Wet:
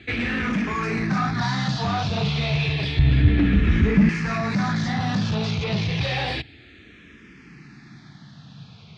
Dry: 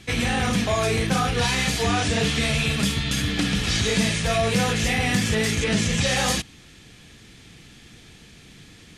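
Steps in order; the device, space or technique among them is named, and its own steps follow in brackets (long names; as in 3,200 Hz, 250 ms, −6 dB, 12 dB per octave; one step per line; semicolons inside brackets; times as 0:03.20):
barber-pole phaser into a guitar amplifier (frequency shifter mixed with the dry sound −0.3 Hz; soft clipping −24 dBFS, distortion −12 dB; loudspeaker in its box 81–4,300 Hz, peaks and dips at 140 Hz +6 dB, 510 Hz −7 dB, 3,100 Hz −7 dB)
0:02.99–0:04.09: RIAA equalisation playback
level +5.5 dB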